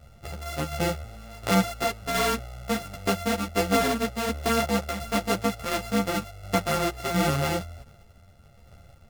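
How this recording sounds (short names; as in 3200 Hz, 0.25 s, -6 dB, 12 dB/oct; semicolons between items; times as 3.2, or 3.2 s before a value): a buzz of ramps at a fixed pitch in blocks of 64 samples; tremolo saw down 1.4 Hz, depth 45%; a shimmering, thickened sound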